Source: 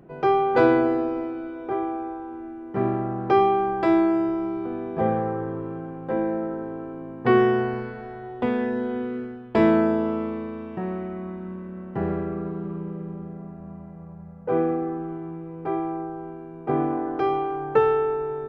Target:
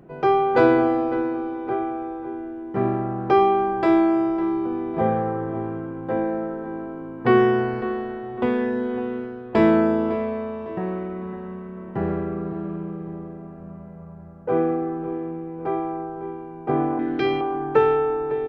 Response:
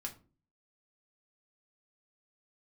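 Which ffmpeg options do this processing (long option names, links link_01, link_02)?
-filter_complex "[0:a]asettb=1/sr,asplit=3[link_01][link_02][link_03];[link_01]atrim=end=16.994[link_04];[link_02]atrim=start=16.99:end=17.41,asetpts=PTS-STARTPTS,afade=type=in:duration=0.004:curve=qsin,afade=type=out:start_time=0.416:duration=0.004:curve=qsin,equalizer=frequency=125:width_type=o:width=1:gain=3,equalizer=frequency=250:width_type=o:width=1:gain=8,equalizer=frequency=500:width_type=o:width=1:gain=-4,equalizer=frequency=1000:width_type=o:width=1:gain=-11,equalizer=frequency=2000:width_type=o:width=1:gain=9,equalizer=frequency=4000:width_type=o:width=1:gain=11[link_05];[link_03]atrim=start=17.406[link_06];[link_04][link_05]acrossfade=duration=0.004:curve1=hsin:curve2=qsin[link_07];[link_07][link_06]acrossfade=duration=0.004:curve1=qsin:curve2=hsin,asplit=2[link_08][link_09];[link_09]adelay=555,lowpass=frequency=2400:poles=1,volume=-12dB,asplit=2[link_10][link_11];[link_11]adelay=555,lowpass=frequency=2400:poles=1,volume=0.44,asplit=2[link_12][link_13];[link_13]adelay=555,lowpass=frequency=2400:poles=1,volume=0.44,asplit=2[link_14][link_15];[link_15]adelay=555,lowpass=frequency=2400:poles=1,volume=0.44[link_16];[link_08][link_10][link_12][link_14][link_16]amix=inputs=5:normalize=0,volume=1.5dB"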